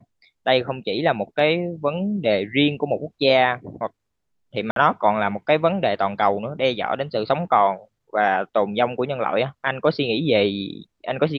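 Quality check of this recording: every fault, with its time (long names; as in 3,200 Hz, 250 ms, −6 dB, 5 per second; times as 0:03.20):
0:04.71–0:04.76: drop-out 52 ms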